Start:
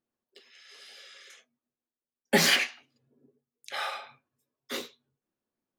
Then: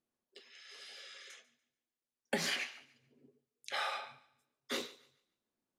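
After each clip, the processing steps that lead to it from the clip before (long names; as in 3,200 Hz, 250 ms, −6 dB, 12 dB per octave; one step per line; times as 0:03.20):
low-pass filter 11,000 Hz 12 dB per octave
downward compressor 16 to 1, threshold −30 dBFS, peak gain reduction 14 dB
feedback echo with a high-pass in the loop 144 ms, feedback 29%, high-pass 350 Hz, level −19 dB
level −1.5 dB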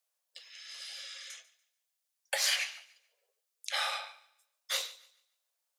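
Butterworth high-pass 510 Hz 72 dB per octave
high-shelf EQ 2,900 Hz +12 dB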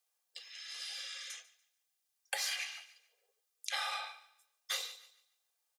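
comb filter 2.5 ms, depth 53%
downward compressor 12 to 1, threshold −33 dBFS, peak gain reduction 9.5 dB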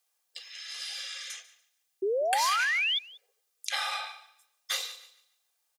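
low-shelf EQ 390 Hz −4 dB
sound drawn into the spectrogram rise, 0:02.02–0:02.99, 370–3,600 Hz −33 dBFS
slap from a distant wall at 32 metres, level −20 dB
level +5.5 dB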